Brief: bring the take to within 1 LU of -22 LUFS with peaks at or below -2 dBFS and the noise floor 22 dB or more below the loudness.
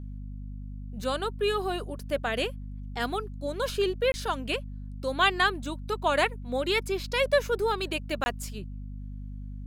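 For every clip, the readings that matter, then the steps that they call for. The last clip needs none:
dropouts 2; longest dropout 20 ms; hum 50 Hz; harmonics up to 250 Hz; hum level -36 dBFS; loudness -28.5 LUFS; peak -9.5 dBFS; loudness target -22.0 LUFS
-> interpolate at 4.12/8.24, 20 ms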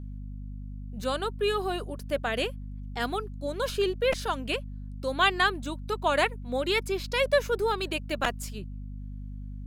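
dropouts 0; hum 50 Hz; harmonics up to 250 Hz; hum level -36 dBFS
-> de-hum 50 Hz, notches 5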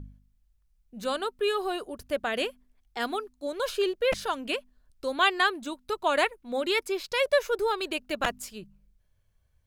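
hum none; loudness -28.5 LUFS; peak -10.0 dBFS; loudness target -22.0 LUFS
-> gain +6.5 dB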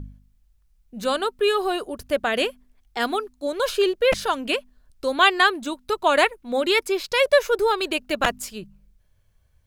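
loudness -22.0 LUFS; peak -3.5 dBFS; noise floor -63 dBFS

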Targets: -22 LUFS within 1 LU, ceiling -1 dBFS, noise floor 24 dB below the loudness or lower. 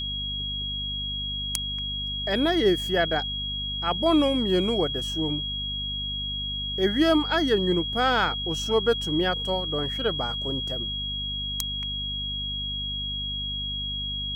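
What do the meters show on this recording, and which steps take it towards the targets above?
hum 50 Hz; harmonics up to 250 Hz; hum level -34 dBFS; steady tone 3300 Hz; tone level -29 dBFS; loudness -25.5 LUFS; peak -7.0 dBFS; loudness target -22.0 LUFS
-> de-hum 50 Hz, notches 5; notch 3300 Hz, Q 30; gain +3.5 dB

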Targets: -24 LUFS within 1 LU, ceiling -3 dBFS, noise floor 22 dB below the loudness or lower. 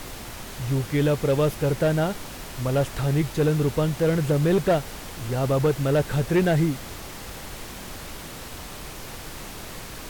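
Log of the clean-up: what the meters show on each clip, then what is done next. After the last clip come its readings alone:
clipped 0.9%; flat tops at -14.5 dBFS; noise floor -38 dBFS; noise floor target -46 dBFS; loudness -23.5 LUFS; peak -14.5 dBFS; loudness target -24.0 LUFS
-> clip repair -14.5 dBFS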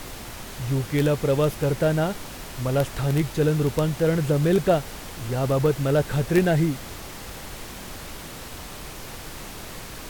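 clipped 0.0%; noise floor -38 dBFS; noise floor target -46 dBFS
-> noise print and reduce 8 dB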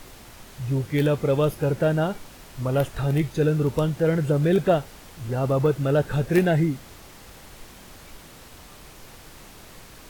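noise floor -46 dBFS; loudness -23.0 LUFS; peak -7.0 dBFS; loudness target -24.0 LUFS
-> gain -1 dB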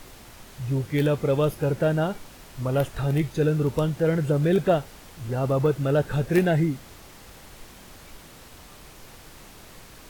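loudness -24.0 LUFS; peak -8.0 dBFS; noise floor -47 dBFS

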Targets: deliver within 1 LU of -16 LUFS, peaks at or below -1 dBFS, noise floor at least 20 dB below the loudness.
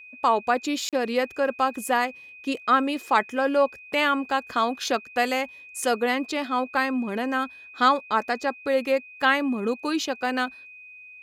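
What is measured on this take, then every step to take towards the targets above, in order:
dropouts 1; longest dropout 37 ms; steady tone 2500 Hz; tone level -43 dBFS; loudness -25.0 LUFS; peak -6.0 dBFS; loudness target -16.0 LUFS
-> interpolate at 0.89, 37 ms; notch 2500 Hz, Q 30; gain +9 dB; limiter -1 dBFS

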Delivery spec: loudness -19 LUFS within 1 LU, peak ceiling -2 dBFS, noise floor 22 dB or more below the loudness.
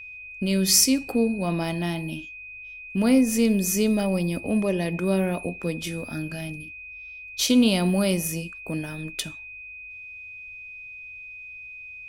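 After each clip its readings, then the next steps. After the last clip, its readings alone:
steady tone 2500 Hz; tone level -38 dBFS; loudness -24.0 LUFS; peak -6.0 dBFS; loudness target -19.0 LUFS
-> notch 2500 Hz, Q 30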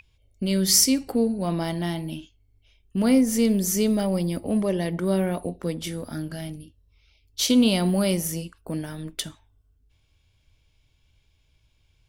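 steady tone none; loudness -24.0 LUFS; peak -6.0 dBFS; loudness target -19.0 LUFS
-> gain +5 dB; limiter -2 dBFS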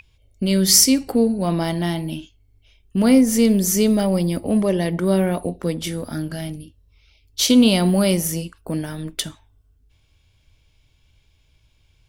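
loudness -19.0 LUFS; peak -2.0 dBFS; noise floor -60 dBFS

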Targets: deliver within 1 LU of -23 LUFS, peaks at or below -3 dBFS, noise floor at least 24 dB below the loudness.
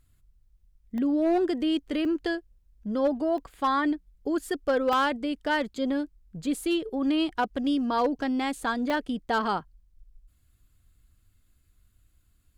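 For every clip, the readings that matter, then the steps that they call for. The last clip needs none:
clipped 0.4%; flat tops at -18.0 dBFS; dropouts 6; longest dropout 1.1 ms; loudness -27.5 LUFS; peak -18.0 dBFS; loudness target -23.0 LUFS
-> clip repair -18 dBFS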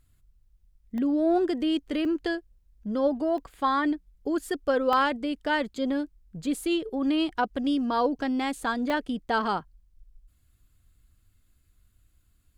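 clipped 0.0%; dropouts 6; longest dropout 1.1 ms
-> interpolate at 0.98/2.05/3.38/4.93/6.61/8.9, 1.1 ms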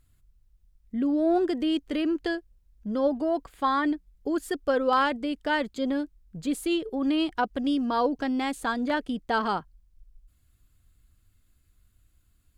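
dropouts 0; loudness -27.5 LUFS; peak -12.0 dBFS; loudness target -23.0 LUFS
-> gain +4.5 dB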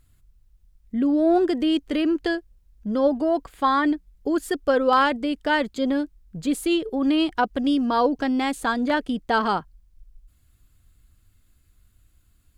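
loudness -23.0 LUFS; peak -7.5 dBFS; noise floor -61 dBFS

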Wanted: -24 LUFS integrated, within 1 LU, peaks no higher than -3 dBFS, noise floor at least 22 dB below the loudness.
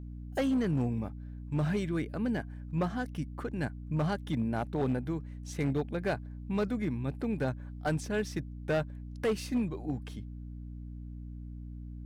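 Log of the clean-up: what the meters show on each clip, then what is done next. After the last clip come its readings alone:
clipped 1.2%; flat tops at -24.0 dBFS; hum 60 Hz; harmonics up to 300 Hz; hum level -40 dBFS; loudness -33.5 LUFS; peak -24.0 dBFS; loudness target -24.0 LUFS
-> clip repair -24 dBFS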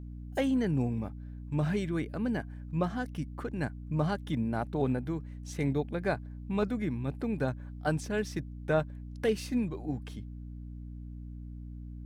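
clipped 0.0%; hum 60 Hz; harmonics up to 300 Hz; hum level -40 dBFS
-> de-hum 60 Hz, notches 5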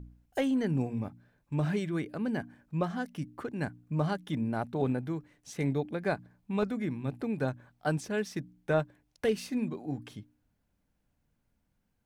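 hum none; loudness -33.5 LUFS; peak -16.0 dBFS; loudness target -24.0 LUFS
-> gain +9.5 dB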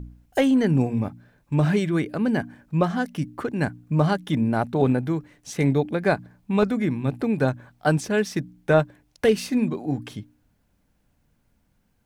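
loudness -24.0 LUFS; peak -6.5 dBFS; noise floor -67 dBFS

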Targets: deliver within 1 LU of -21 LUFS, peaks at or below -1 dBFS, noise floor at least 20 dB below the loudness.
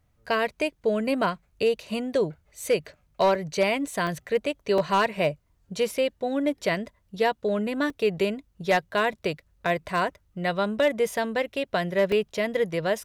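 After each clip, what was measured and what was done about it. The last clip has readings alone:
clipped 0.2%; flat tops at -14.5 dBFS; dropouts 5; longest dropout 2.6 ms; loudness -26.5 LUFS; peak -14.5 dBFS; loudness target -21.0 LUFS
-> clip repair -14.5 dBFS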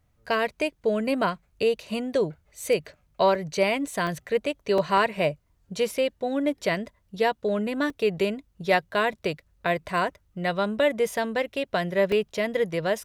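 clipped 0.0%; dropouts 5; longest dropout 2.6 ms
-> interpolate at 3.35/4.07/4.78/7.9/12.12, 2.6 ms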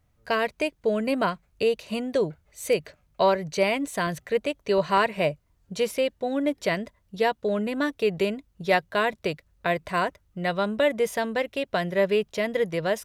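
dropouts 0; loudness -26.0 LUFS; peak -7.0 dBFS; loudness target -21.0 LUFS
-> gain +5 dB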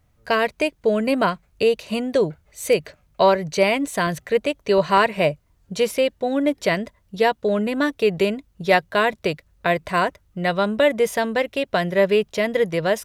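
loudness -21.0 LUFS; peak -2.0 dBFS; noise floor -62 dBFS

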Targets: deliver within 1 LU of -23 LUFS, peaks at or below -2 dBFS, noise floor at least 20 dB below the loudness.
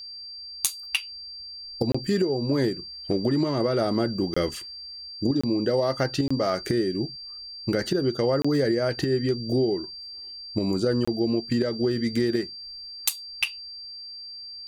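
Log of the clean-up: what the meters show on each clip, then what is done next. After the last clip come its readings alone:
dropouts 6; longest dropout 25 ms; steady tone 4700 Hz; tone level -37 dBFS; loudness -26.0 LUFS; peak -6.5 dBFS; loudness target -23.0 LUFS
-> interpolate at 1.92/4.34/5.41/6.28/8.42/11.05, 25 ms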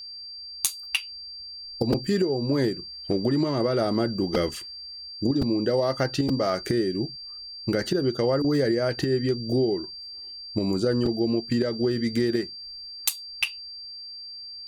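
dropouts 0; steady tone 4700 Hz; tone level -37 dBFS
-> notch 4700 Hz, Q 30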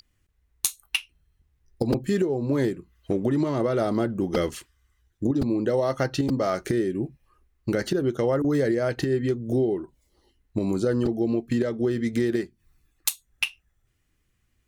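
steady tone none; loudness -26.0 LUFS; peak -6.5 dBFS; loudness target -23.0 LUFS
-> gain +3 dB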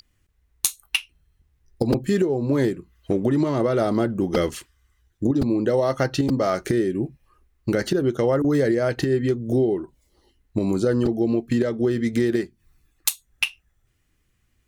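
loudness -23.0 LUFS; peak -3.5 dBFS; noise floor -68 dBFS

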